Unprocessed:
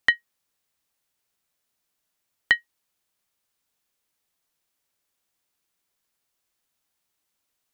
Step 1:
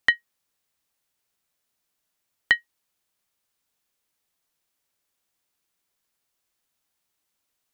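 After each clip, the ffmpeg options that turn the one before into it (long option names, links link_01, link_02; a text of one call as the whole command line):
ffmpeg -i in.wav -af anull out.wav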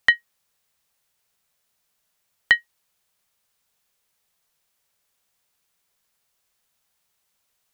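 ffmpeg -i in.wav -filter_complex "[0:a]asplit=2[link_01][link_02];[link_02]alimiter=limit=-14dB:level=0:latency=1:release=29,volume=-1.5dB[link_03];[link_01][link_03]amix=inputs=2:normalize=0,equalizer=frequency=300:width_type=o:width=0.26:gain=-14.5" out.wav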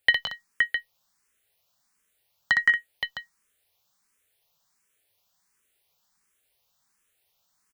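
ffmpeg -i in.wav -filter_complex "[0:a]aecho=1:1:60|167|186|229|519|659:0.596|0.631|0.266|0.237|0.473|0.299,asplit=2[link_01][link_02];[link_02]afreqshift=1.4[link_03];[link_01][link_03]amix=inputs=2:normalize=1" out.wav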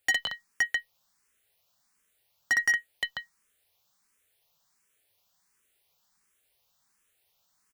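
ffmpeg -i in.wav -af "asoftclip=type=hard:threshold=-20dB" out.wav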